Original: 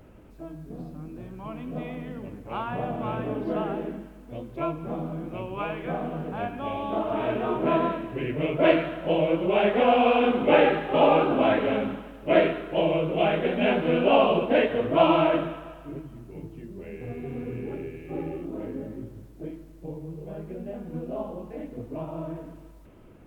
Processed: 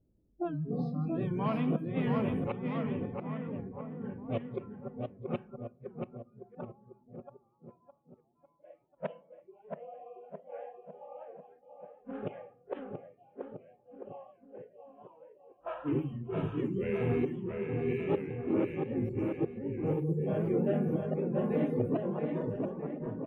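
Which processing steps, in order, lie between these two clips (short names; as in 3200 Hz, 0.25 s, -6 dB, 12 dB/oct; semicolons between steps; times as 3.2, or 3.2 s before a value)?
flipped gate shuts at -25 dBFS, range -31 dB; soft clip -29.5 dBFS, distortion -18 dB; dynamic EQ 360 Hz, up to +4 dB, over -57 dBFS, Q 4.7; spectral noise reduction 27 dB; bouncing-ball echo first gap 0.68 s, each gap 0.9×, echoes 5; on a send at -20 dB: reverb RT60 0.95 s, pre-delay 6 ms; on the sum: low-pass opened by the level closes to 340 Hz, open at -34 dBFS; record warp 78 rpm, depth 100 cents; gain +7 dB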